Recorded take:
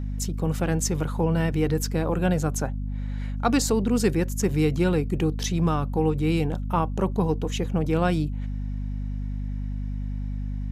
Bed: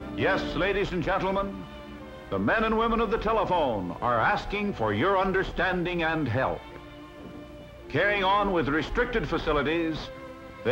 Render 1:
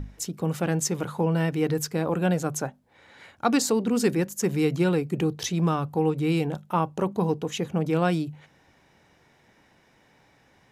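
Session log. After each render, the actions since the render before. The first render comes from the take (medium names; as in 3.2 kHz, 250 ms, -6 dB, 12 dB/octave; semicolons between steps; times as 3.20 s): hum notches 50/100/150/200/250 Hz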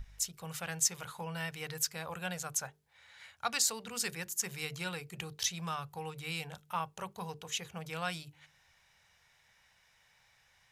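amplifier tone stack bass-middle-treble 10-0-10; hum notches 50/100/150/200/250/300/350/400/450 Hz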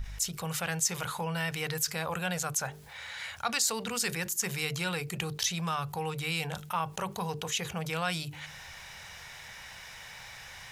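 level flattener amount 50%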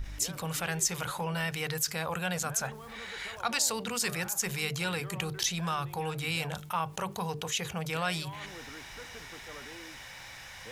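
add bed -23 dB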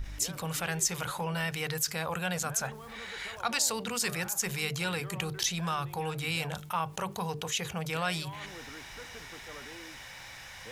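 no audible change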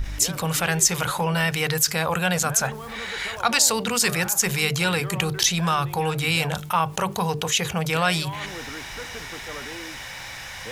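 trim +10 dB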